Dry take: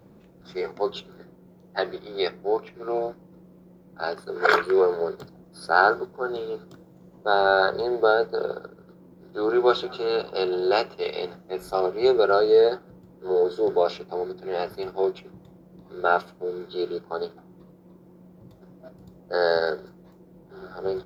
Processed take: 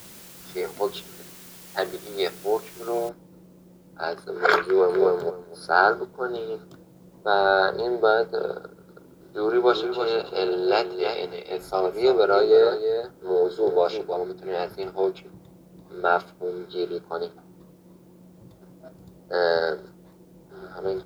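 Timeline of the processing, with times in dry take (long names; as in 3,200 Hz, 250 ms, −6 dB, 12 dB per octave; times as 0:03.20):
0:03.09: noise floor change −46 dB −69 dB
0:04.64–0:05.05: delay throw 250 ms, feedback 15%, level −1.5 dB
0:08.64–0:14.17: single-tap delay 324 ms −8 dB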